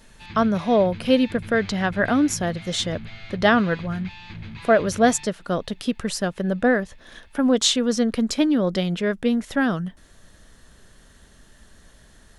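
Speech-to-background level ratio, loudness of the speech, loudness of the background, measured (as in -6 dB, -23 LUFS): 16.5 dB, -22.0 LUFS, -38.5 LUFS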